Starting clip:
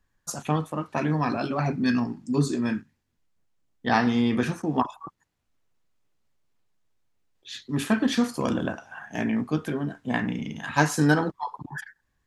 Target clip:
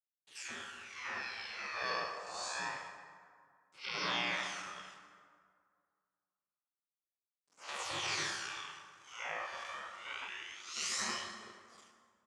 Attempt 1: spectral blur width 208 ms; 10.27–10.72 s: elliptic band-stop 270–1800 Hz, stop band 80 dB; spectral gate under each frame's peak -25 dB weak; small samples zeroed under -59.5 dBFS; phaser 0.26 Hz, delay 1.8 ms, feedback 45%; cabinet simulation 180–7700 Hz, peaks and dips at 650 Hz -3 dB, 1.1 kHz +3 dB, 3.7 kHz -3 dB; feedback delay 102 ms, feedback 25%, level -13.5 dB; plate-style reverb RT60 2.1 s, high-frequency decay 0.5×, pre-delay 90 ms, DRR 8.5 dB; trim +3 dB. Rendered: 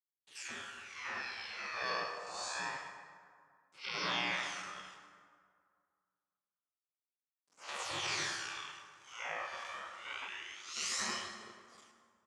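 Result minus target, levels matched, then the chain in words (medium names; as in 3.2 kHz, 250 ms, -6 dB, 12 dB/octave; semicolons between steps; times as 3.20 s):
echo 28 ms late
spectral blur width 208 ms; 10.27–10.72 s: elliptic band-stop 270–1800 Hz, stop band 80 dB; spectral gate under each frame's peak -25 dB weak; small samples zeroed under -59.5 dBFS; phaser 0.26 Hz, delay 1.8 ms, feedback 45%; cabinet simulation 180–7700 Hz, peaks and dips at 650 Hz -3 dB, 1.1 kHz +3 dB, 3.7 kHz -3 dB; feedback delay 74 ms, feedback 25%, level -13.5 dB; plate-style reverb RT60 2.1 s, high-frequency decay 0.5×, pre-delay 90 ms, DRR 8.5 dB; trim +3 dB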